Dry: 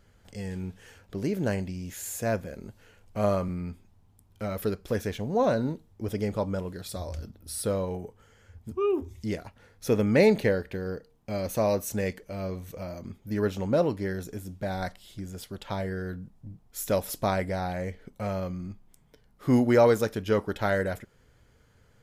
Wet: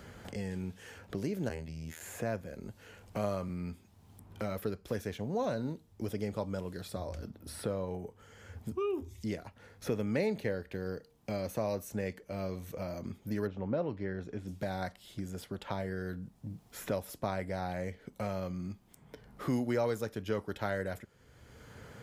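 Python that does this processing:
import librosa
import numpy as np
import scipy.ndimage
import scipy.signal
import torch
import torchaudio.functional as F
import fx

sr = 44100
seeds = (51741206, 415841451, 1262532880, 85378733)

y = fx.robotise(x, sr, hz=80.0, at=(1.49, 2.01))
y = fx.lowpass(y, sr, hz=fx.line((13.46, 1300.0), (14.47, 2600.0)), slope=12, at=(13.46, 14.47), fade=0.02)
y = scipy.signal.sosfilt(scipy.signal.butter(2, 47.0, 'highpass', fs=sr, output='sos'), y)
y = fx.band_squash(y, sr, depth_pct=70)
y = F.gain(torch.from_numpy(y), -7.0).numpy()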